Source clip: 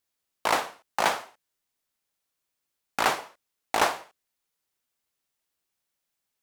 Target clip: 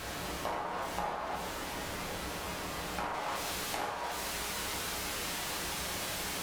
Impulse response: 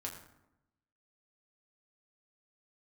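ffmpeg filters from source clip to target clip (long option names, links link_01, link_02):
-filter_complex "[0:a]aeval=exprs='val(0)+0.5*0.0596*sgn(val(0))':channel_layout=same,asetnsamples=nb_out_samples=441:pad=0,asendcmd='3.14 lowpass f 3900',lowpass=frequency=1300:poles=1,acompressor=threshold=-36dB:ratio=16[link_01];[1:a]atrim=start_sample=2205,atrim=end_sample=6174,asetrate=29547,aresample=44100[link_02];[link_01][link_02]afir=irnorm=-1:irlink=0,volume=2dB"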